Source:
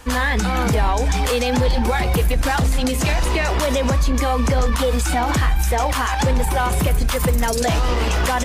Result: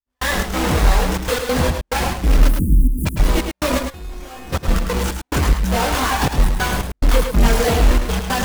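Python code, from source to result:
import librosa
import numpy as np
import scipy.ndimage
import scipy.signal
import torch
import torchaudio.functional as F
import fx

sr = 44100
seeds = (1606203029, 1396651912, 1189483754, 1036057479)

p1 = fx.halfwave_hold(x, sr)
p2 = fx.chorus_voices(p1, sr, voices=6, hz=0.28, base_ms=24, depth_ms=3.5, mix_pct=55)
p3 = fx.comb_fb(p2, sr, f0_hz=360.0, decay_s=0.7, harmonics='all', damping=0.0, mix_pct=90, at=(3.78, 4.52), fade=0.02)
p4 = fx.step_gate(p3, sr, bpm=141, pattern='..xx.xxxxxx.x.xx', floor_db=-60.0, edge_ms=4.5)
p5 = fx.cheby2_bandstop(p4, sr, low_hz=680.0, high_hz=5000.0, order=4, stop_db=50, at=(2.47, 3.05), fade=0.02)
y = p5 + fx.echo_single(p5, sr, ms=106, db=-6.0, dry=0)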